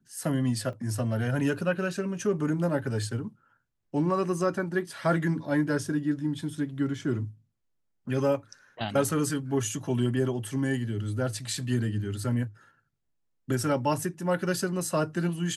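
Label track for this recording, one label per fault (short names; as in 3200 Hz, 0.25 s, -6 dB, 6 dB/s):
0.730000	0.730000	gap 3.2 ms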